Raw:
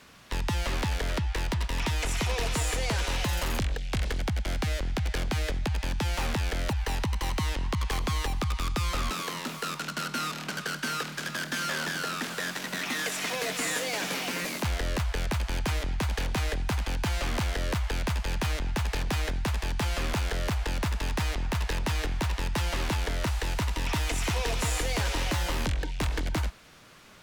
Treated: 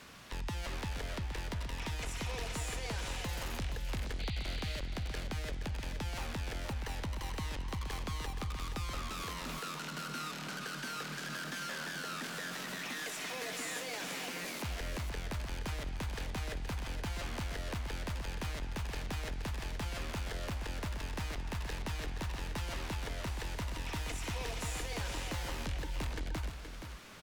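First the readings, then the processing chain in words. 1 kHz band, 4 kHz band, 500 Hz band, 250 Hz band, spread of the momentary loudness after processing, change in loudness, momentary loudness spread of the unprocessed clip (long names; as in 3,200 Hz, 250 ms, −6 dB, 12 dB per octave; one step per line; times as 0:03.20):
−9.0 dB, −8.5 dB, −9.5 dB, −9.0 dB, 2 LU, −9.0 dB, 3 LU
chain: brickwall limiter −33 dBFS, peak gain reduction 10.5 dB
sound drawn into the spectrogram noise, 0:04.19–0:04.80, 1,900–4,800 Hz −47 dBFS
single-tap delay 473 ms −8 dB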